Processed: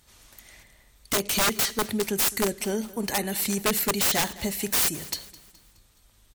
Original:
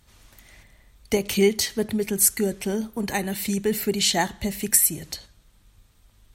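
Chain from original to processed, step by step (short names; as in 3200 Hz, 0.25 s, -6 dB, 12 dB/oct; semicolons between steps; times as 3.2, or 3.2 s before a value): tone controls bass -5 dB, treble +4 dB; wrapped overs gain 17 dB; on a send: feedback echo 0.21 s, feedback 46%, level -19 dB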